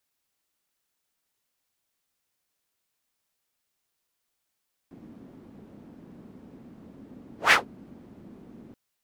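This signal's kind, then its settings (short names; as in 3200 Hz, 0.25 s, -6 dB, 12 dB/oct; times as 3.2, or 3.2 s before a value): whoosh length 3.83 s, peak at 2.61, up 0.15 s, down 0.15 s, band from 240 Hz, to 2000 Hz, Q 2.4, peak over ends 32.5 dB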